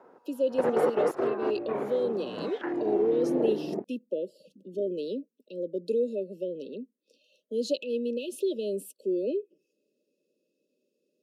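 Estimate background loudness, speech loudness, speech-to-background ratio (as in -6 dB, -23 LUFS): -31.0 LUFS, -32.0 LUFS, -1.0 dB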